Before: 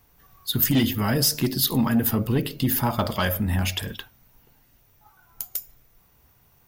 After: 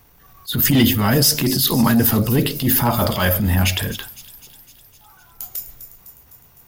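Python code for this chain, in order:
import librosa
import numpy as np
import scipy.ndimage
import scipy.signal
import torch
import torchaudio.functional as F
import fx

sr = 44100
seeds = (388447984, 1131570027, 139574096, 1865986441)

y = fx.transient(x, sr, attack_db=-9, sustain_db=3)
y = fx.echo_wet_highpass(y, sr, ms=254, feedback_pct=63, hz=5300.0, wet_db=-10.5)
y = y * librosa.db_to_amplitude(7.5)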